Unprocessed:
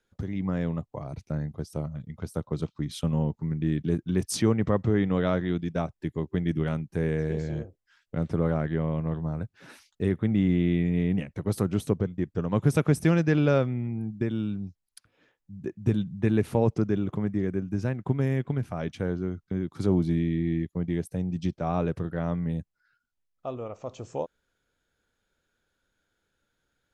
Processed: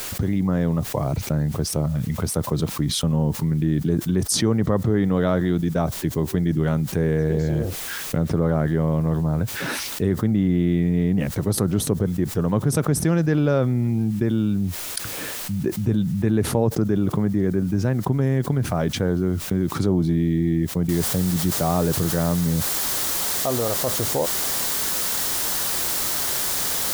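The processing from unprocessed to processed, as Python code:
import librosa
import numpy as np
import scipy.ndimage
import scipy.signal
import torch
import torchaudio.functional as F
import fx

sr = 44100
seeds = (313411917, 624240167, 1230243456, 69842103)

y = fx.noise_floor_step(x, sr, seeds[0], at_s=20.89, before_db=-64, after_db=-40, tilt_db=0.0)
y = fx.dynamic_eq(y, sr, hz=2500.0, q=2.2, threshold_db=-55.0, ratio=4.0, max_db=-7)
y = fx.env_flatten(y, sr, amount_pct=70)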